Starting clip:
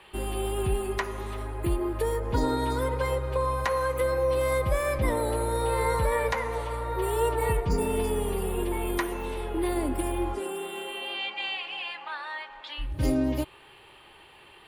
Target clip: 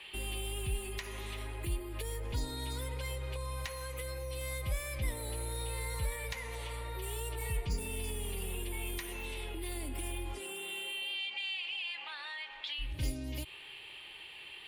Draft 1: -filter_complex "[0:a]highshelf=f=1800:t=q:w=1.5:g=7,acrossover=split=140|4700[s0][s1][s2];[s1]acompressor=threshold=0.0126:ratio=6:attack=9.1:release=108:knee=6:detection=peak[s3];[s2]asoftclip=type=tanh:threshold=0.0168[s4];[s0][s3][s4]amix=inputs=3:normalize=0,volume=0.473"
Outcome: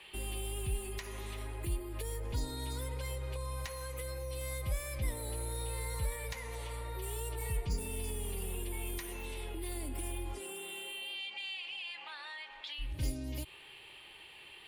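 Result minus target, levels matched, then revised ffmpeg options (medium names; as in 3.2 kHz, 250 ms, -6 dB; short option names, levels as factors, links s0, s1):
4 kHz band -3.0 dB
-filter_complex "[0:a]highshelf=f=1800:t=q:w=1.5:g=7,acrossover=split=140|4700[s0][s1][s2];[s1]acompressor=threshold=0.0126:ratio=6:attack=9.1:release=108:knee=6:detection=peak,equalizer=f=3200:w=0.77:g=5.5[s3];[s2]asoftclip=type=tanh:threshold=0.0168[s4];[s0][s3][s4]amix=inputs=3:normalize=0,volume=0.473"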